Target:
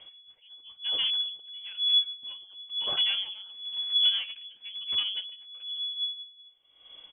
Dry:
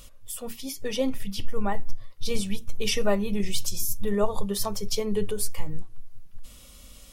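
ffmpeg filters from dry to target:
-filter_complex "[0:a]asettb=1/sr,asplit=3[s0][s1][s2];[s0]atrim=end=0.394[s3];[s1]atrim=start=0.39:end=1.4,asetpts=PTS-STARTPTS,afade=t=in:d=0.004:c=qsin,afade=t=out:st=1.006:d=0.004:c=qsin,lowshelf=f=170:g=8[s4];[s2]atrim=start=1.396[s5];[s3][s4]acrossfade=d=0.004:c1=hsin:c2=qsin[s6];[s6][s5]acrossfade=d=0.004:c1=qsin:c2=hsin,asettb=1/sr,asplit=3[s7][s8][s9];[s7]atrim=end=3.094[s10];[s8]atrim=start=3.09:end=4.45,asetpts=PTS-STARTPTS,afade=t=in:d=0.004:c=qsin,afade=t=out:st=1.356:d=0.004:c=qsin,acontrast=77[s11];[s9]atrim=start=4.446[s12];[s10][s11]acrossfade=d=0.004:c1=hsin:c2=qsin[s13];[s13][s12]acrossfade=d=0.004:c1=qsin:c2=hsin,alimiter=limit=0.188:level=0:latency=1:release=22,aeval=exprs='0.188*(cos(1*acos(clip(val(0)/0.188,-1,1)))-cos(1*PI/2))+0.0168*(cos(5*acos(clip(val(0)/0.188,-1,1)))-cos(5*PI/2))+0.0168*(cos(6*acos(clip(val(0)/0.188,-1,1)))-cos(6*PI/2))+0.00119*(cos(8*acos(clip(val(0)/0.188,-1,1)))-cos(8*PI/2))':c=same,aecho=1:1:224:0.1,lowpass=f=2900:t=q:w=0.5098,lowpass=f=2900:t=q:w=0.6013,lowpass=f=2900:t=q:w=0.9,lowpass=f=2900:t=q:w=2.563,afreqshift=-3400,aeval=exprs='val(0)*pow(10,-22*(0.5-0.5*cos(2*PI*1*n/s))/20)':c=same,volume=0.596"

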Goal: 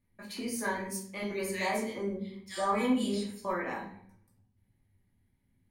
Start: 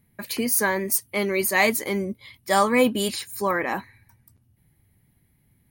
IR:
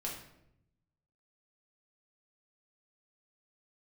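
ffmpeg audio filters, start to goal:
-filter_complex "[0:a]lowpass=9200,asettb=1/sr,asplit=3[s0][s1][s2];[s0]atrim=end=1.224[s3];[s1]atrim=start=1.22:end=3.45,asetpts=PTS-STARTPTS,afade=t=in:d=0.004:c=qsin,afade=t=out:st=2.226:d=0.004:c=qsin,acrossover=split=1800[s4][s5];[s4]adelay=80[s6];[s6][s5]amix=inputs=2:normalize=0,atrim=end_sample=98343[s7];[s2]atrim=start=3.446[s8];[s3][s7]acrossfade=d=0.004:c1=hsin:c2=qsin[s9];[s9][s8]acrossfade=d=0.004:c1=qsin:c2=hsin[s10];[1:a]atrim=start_sample=2205,asetrate=61740,aresample=44100[s11];[s10][s11]afir=irnorm=-1:irlink=0,volume=0.398"

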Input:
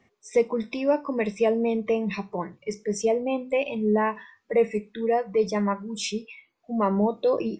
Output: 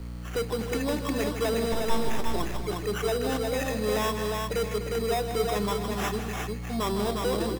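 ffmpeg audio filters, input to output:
-filter_complex "[0:a]aecho=1:1:2.7:0.46,aeval=exprs='val(0)+0.0178*(sin(2*PI*60*n/s)+sin(2*PI*2*60*n/s)/2+sin(2*PI*3*60*n/s)/3+sin(2*PI*4*60*n/s)/4+sin(2*PI*5*60*n/s)/5)':c=same,asettb=1/sr,asplit=3[s0][s1][s2];[s0]atrim=end=1.724[s3];[s1]atrim=start=1.72:end=2.27,asetpts=PTS-STARTPTS,afade=t=in:d=0.004:c=qsin,afade=t=out:st=0.546:d=0.004:c=qsin,aeval=exprs='abs(val(0))':c=same[s4];[s2]atrim=start=2.266[s5];[s3][s4]acrossfade=d=0.004:c1=hsin:c2=qsin[s6];[s6][s5]acrossfade=d=0.004:c1=qsin:c2=hsin,acrossover=split=120[s7][s8];[s7]acrusher=bits=7:mix=0:aa=0.000001[s9];[s8]asoftclip=type=tanh:threshold=0.0562[s10];[s9][s10]amix=inputs=2:normalize=0,acrusher=samples=10:mix=1:aa=0.000001,aecho=1:1:156|252|357|652:0.335|0.266|0.668|0.188"

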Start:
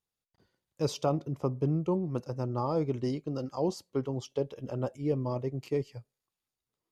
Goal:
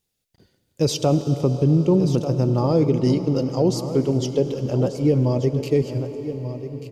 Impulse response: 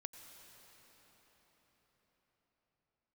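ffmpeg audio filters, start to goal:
-filter_complex "[0:a]equalizer=f=1100:w=1.1:g=-10.5,aecho=1:1:1188:0.237,asplit=2[s0][s1];[1:a]atrim=start_sample=2205[s2];[s1][s2]afir=irnorm=-1:irlink=0,volume=2.51[s3];[s0][s3]amix=inputs=2:normalize=0,alimiter=level_in=5.01:limit=0.891:release=50:level=0:latency=1,volume=0.398"

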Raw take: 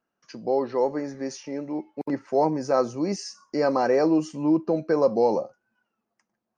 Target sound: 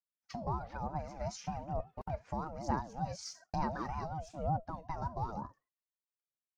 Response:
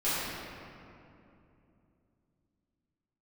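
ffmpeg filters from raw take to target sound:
-af "lowshelf=f=190:g=6.5,agate=range=0.0224:threshold=0.00562:ratio=3:detection=peak,acompressor=threshold=0.0251:ratio=6,aphaser=in_gain=1:out_gain=1:delay=4.1:decay=0.56:speed=1.1:type=sinusoidal,aeval=exprs='val(0)*sin(2*PI*400*n/s+400*0.2/5.3*sin(2*PI*5.3*n/s))':c=same,volume=0.708"

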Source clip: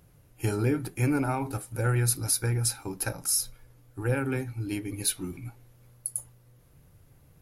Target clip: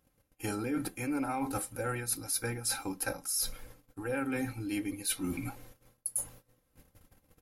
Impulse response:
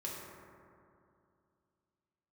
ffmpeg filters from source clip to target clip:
-af "agate=range=0.0891:threshold=0.002:ratio=16:detection=peak,lowshelf=f=200:g=-6.5,aecho=1:1:3.8:0.55,areverse,acompressor=threshold=0.00891:ratio=6,areverse,volume=2.82"

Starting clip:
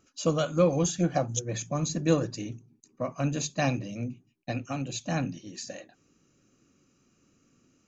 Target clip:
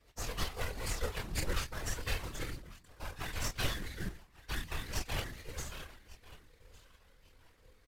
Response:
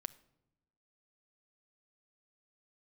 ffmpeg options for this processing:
-filter_complex "[0:a]acrossover=split=260|3000[s0][s1][s2];[s1]acompressor=threshold=0.0316:ratio=6[s3];[s0][s3][s2]amix=inputs=3:normalize=0,highshelf=f=5600:g=-5.5,acrossover=split=120|590|3800[s4][s5][s6][s7];[s5]acompressor=threshold=0.00631:ratio=16[s8];[s4][s8][s6][s7]amix=inputs=4:normalize=0,firequalizer=gain_entry='entry(110,0);entry(160,-27);entry(360,12);entry(530,-30);entry(760,-4);entry(1900,5);entry(2900,5);entry(4200,4);entry(10000,-18)':delay=0.05:min_phase=1,aecho=1:1:1149|2298:0.1|0.024,aeval=exprs='abs(val(0))':c=same,flanger=delay=22.5:depth=6.7:speed=0.36,acrusher=bits=3:mode=log:mix=0:aa=0.000001,afftfilt=real='hypot(re,im)*cos(2*PI*random(0))':imag='hypot(re,im)*sin(2*PI*random(1))':win_size=512:overlap=0.75,asetrate=31183,aresample=44100,atempo=1.41421,volume=3.76"

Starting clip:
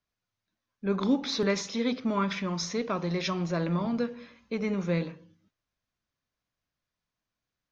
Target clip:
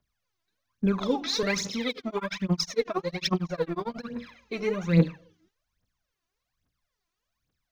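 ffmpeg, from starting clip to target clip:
-filter_complex "[0:a]aphaser=in_gain=1:out_gain=1:delay=3.1:decay=0.79:speed=1.2:type=triangular,asettb=1/sr,asplit=3[s0][s1][s2];[s0]atrim=end=1.894[s3];[s1]atrim=start=1.89:end=4.1,asetpts=PTS-STARTPTS,afade=t=in:d=0.004:c=qsin,afade=t=out:st=2.206:d=0.004:c=qsin,tremolo=f=11:d=0.98[s4];[s2]atrim=start=4.096[s5];[s3][s4]acrossfade=d=0.004:c1=hsin:c2=qsin[s6];[s6][s5]acrossfade=d=0.004:c1=qsin:c2=hsin"

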